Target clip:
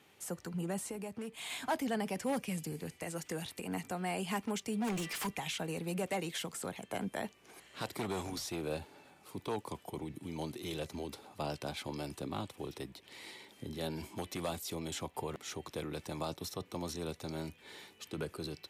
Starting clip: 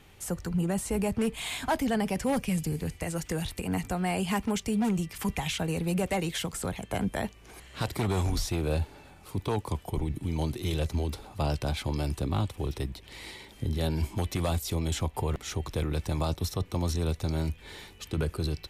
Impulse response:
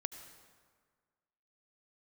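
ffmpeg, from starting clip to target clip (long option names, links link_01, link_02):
-filter_complex "[0:a]highpass=200,asettb=1/sr,asplit=3[link_01][link_02][link_03];[link_01]atrim=end=0.854[link_04];[link_02]atrim=start=0.85:end=1.5,asetpts=PTS-STARTPTS,afade=type=in:duration=0.004:curve=qsin,afade=type=out:start_time=0.646:duration=0.004:curve=qsin,acompressor=threshold=-33dB:ratio=6[link_05];[link_03]atrim=start=1.496[link_06];[link_04][link_05]acrossfade=duration=0.004:curve1=hsin:curve2=qsin[link_07];[link_07][link_06]acrossfade=duration=0.004:curve1=qsin:curve2=hsin,asplit=3[link_08][link_09][link_10];[link_08]afade=type=out:start_time=4.86:duration=0.02[link_11];[link_09]asplit=2[link_12][link_13];[link_13]highpass=frequency=720:poles=1,volume=24dB,asoftclip=type=tanh:threshold=-23.5dB[link_14];[link_12][link_14]amix=inputs=2:normalize=0,lowpass=frequency=6100:poles=1,volume=-6dB,afade=type=in:start_time=4.86:duration=0.02,afade=type=out:start_time=5.26:duration=0.02[link_15];[link_10]afade=type=in:start_time=5.26:duration=0.02[link_16];[link_11][link_15][link_16]amix=inputs=3:normalize=0,volume=-6dB"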